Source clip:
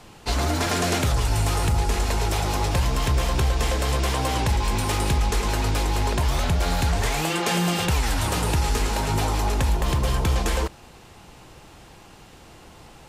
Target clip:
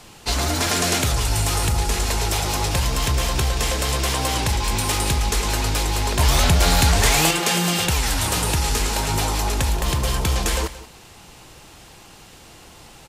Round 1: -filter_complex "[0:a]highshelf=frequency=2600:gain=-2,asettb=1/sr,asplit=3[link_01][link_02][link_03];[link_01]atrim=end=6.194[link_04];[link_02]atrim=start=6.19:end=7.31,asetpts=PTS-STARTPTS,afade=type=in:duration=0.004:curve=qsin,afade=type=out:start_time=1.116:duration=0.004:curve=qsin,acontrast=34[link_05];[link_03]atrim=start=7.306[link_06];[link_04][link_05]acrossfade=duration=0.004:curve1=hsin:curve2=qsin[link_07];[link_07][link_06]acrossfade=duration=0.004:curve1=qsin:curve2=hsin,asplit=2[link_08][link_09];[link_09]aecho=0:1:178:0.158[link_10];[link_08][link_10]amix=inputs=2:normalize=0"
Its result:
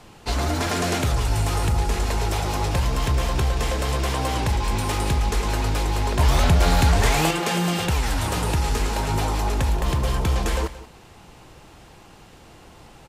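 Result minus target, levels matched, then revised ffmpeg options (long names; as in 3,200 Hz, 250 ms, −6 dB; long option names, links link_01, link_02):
4,000 Hz band −4.0 dB
-filter_complex "[0:a]highshelf=frequency=2600:gain=8,asettb=1/sr,asplit=3[link_01][link_02][link_03];[link_01]atrim=end=6.194[link_04];[link_02]atrim=start=6.19:end=7.31,asetpts=PTS-STARTPTS,afade=type=in:duration=0.004:curve=qsin,afade=type=out:start_time=1.116:duration=0.004:curve=qsin,acontrast=34[link_05];[link_03]atrim=start=7.306[link_06];[link_04][link_05]acrossfade=duration=0.004:curve1=hsin:curve2=qsin[link_07];[link_07][link_06]acrossfade=duration=0.004:curve1=qsin:curve2=hsin,asplit=2[link_08][link_09];[link_09]aecho=0:1:178:0.158[link_10];[link_08][link_10]amix=inputs=2:normalize=0"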